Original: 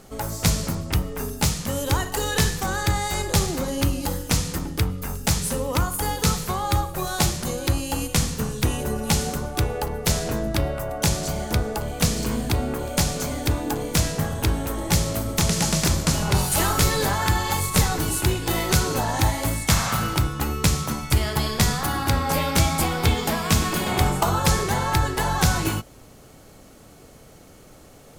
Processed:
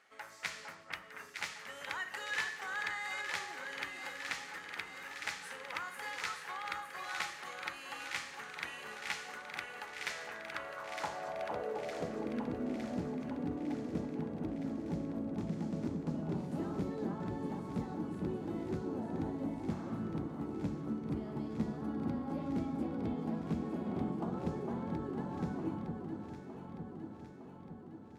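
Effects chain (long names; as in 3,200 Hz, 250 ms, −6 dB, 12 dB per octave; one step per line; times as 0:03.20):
low-shelf EQ 160 Hz −8 dB
band-pass filter sweep 1,900 Hz → 250 Hz, 0:10.31–0:12.48
delay that swaps between a low-pass and a high-pass 455 ms, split 1,400 Hz, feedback 78%, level −4 dB
level −5 dB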